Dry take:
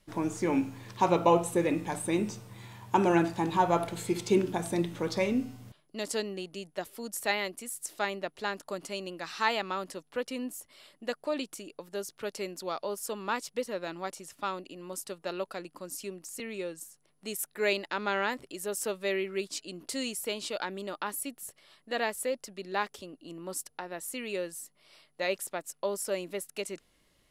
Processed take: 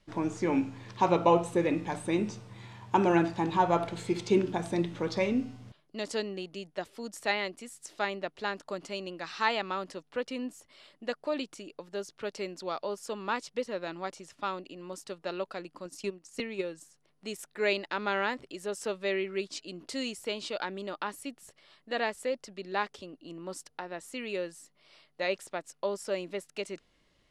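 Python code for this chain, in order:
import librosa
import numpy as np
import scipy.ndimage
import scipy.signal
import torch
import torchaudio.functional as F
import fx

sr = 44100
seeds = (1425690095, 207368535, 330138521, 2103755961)

y = scipy.signal.sosfilt(scipy.signal.butter(2, 5800.0, 'lowpass', fs=sr, output='sos'), x)
y = fx.transient(y, sr, attack_db=8, sustain_db=-9, at=(15.85, 16.65))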